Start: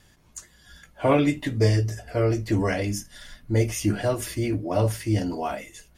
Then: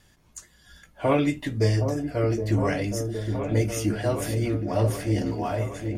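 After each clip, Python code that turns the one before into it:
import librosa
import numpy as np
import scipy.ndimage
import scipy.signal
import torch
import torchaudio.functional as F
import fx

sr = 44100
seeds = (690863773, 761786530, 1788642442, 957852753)

y = fx.echo_opening(x, sr, ms=767, hz=750, octaves=1, feedback_pct=70, wet_db=-6)
y = F.gain(torch.from_numpy(y), -2.0).numpy()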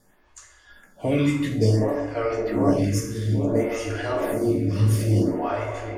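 y = fx.rev_plate(x, sr, seeds[0], rt60_s=1.4, hf_ratio=0.5, predelay_ms=0, drr_db=-1.0)
y = fx.stagger_phaser(y, sr, hz=0.57)
y = F.gain(torch.from_numpy(y), 2.0).numpy()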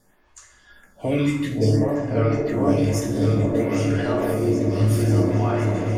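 y = fx.echo_opening(x, sr, ms=530, hz=400, octaves=2, feedback_pct=70, wet_db=-3)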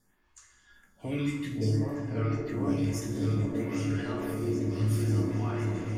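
y = fx.peak_eq(x, sr, hz=600.0, db=-9.0, octaves=0.85)
y = fx.rev_schroeder(y, sr, rt60_s=1.4, comb_ms=25, drr_db=13.0)
y = F.gain(torch.from_numpy(y), -8.5).numpy()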